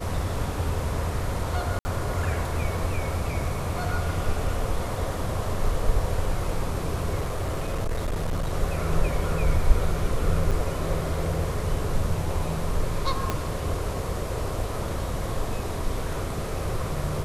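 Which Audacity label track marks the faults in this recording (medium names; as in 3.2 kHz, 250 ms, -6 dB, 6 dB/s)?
1.790000	1.850000	dropout 60 ms
7.200000	8.540000	clipped -23 dBFS
10.510000	10.520000	dropout 5.7 ms
13.300000	13.300000	pop -11 dBFS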